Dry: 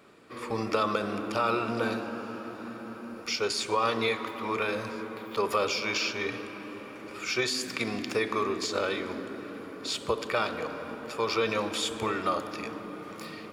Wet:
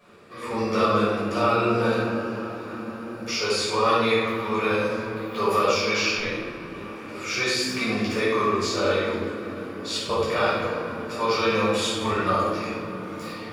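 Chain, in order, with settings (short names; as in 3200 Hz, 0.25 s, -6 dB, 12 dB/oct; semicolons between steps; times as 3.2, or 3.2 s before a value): 6.16–6.72 ring modulator 110 Hz -> 22 Hz; shoebox room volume 520 m³, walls mixed, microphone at 5.7 m; gain -6.5 dB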